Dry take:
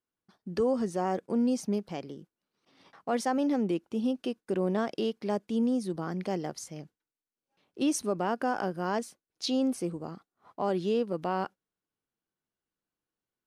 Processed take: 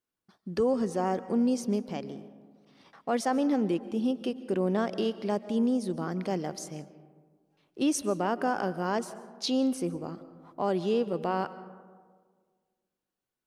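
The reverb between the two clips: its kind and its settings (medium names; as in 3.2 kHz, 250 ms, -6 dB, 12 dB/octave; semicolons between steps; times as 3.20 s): algorithmic reverb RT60 1.7 s, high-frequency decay 0.35×, pre-delay 100 ms, DRR 15 dB; trim +1 dB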